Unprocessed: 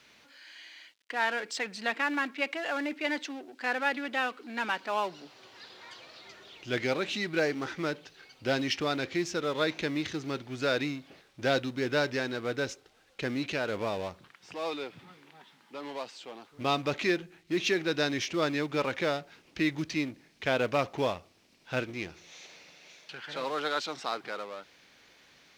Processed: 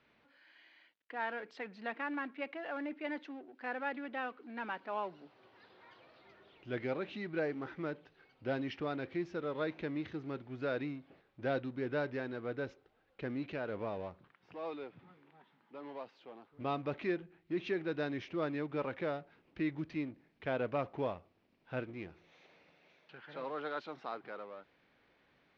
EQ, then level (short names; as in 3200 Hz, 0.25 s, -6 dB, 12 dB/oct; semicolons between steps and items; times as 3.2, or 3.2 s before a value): air absorption 250 m; high shelf 2300 Hz -8.5 dB; -5.5 dB